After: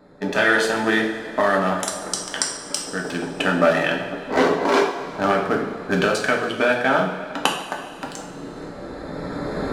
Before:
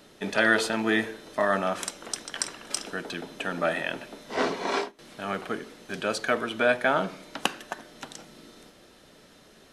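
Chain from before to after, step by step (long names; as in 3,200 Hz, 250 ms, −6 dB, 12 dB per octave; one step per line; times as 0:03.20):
adaptive Wiener filter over 15 samples
camcorder AGC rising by 12 dB per second
coupled-rooms reverb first 0.55 s, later 2.7 s, from −13 dB, DRR 0 dB
level +2.5 dB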